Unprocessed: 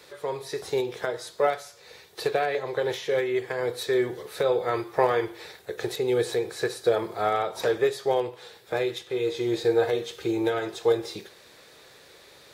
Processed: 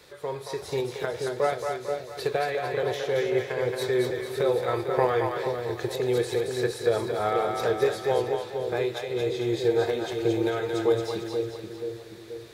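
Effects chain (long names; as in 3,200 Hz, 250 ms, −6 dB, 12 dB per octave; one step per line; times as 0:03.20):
low-shelf EQ 140 Hz +10 dB
on a send: echo with a time of its own for lows and highs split 550 Hz, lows 481 ms, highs 224 ms, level −4 dB
on the sum: level −2.5 dB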